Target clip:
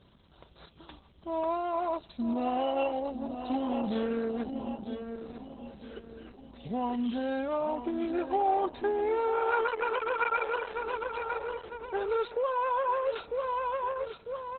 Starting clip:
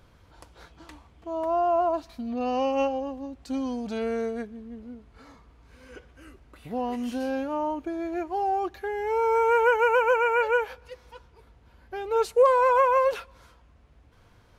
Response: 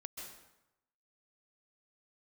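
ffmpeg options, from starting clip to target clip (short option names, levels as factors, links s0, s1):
-filter_complex "[0:a]highpass=66,aexciter=amount=3.2:drive=5.7:freq=3200,aecho=1:1:948|1896|2844|3792|4740:0.316|0.136|0.0585|0.0251|0.0108,asplit=2[s0][s1];[s1]adynamicsmooth=sensitivity=3.5:basefreq=830,volume=0.891[s2];[s0][s2]amix=inputs=2:normalize=0,aresample=32000,aresample=44100,highshelf=f=2500:g=2,acompressor=threshold=0.0794:ratio=4,aecho=1:1:5.1:0.44,volume=0.596" -ar 48000 -c:a libopus -b:a 8k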